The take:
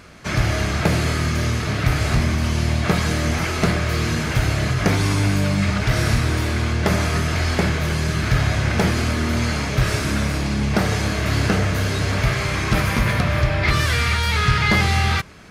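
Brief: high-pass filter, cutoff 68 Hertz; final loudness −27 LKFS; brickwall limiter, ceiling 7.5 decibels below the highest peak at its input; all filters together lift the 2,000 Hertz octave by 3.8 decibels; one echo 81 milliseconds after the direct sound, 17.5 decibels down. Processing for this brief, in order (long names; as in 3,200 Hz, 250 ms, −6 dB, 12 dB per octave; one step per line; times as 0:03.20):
high-pass filter 68 Hz
parametric band 2,000 Hz +4.5 dB
brickwall limiter −10.5 dBFS
single-tap delay 81 ms −17.5 dB
level −6.5 dB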